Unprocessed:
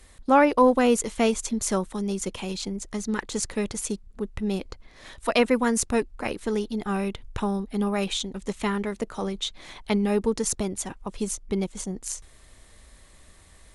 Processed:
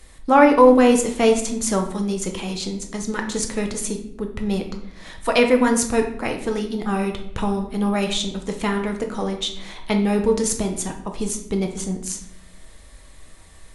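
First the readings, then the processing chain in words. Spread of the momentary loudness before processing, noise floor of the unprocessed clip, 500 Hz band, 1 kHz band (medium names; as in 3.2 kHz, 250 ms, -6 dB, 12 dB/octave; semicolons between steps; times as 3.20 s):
11 LU, -53 dBFS, +6.0 dB, +5.0 dB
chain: simulated room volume 160 m³, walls mixed, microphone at 0.64 m; trim +3 dB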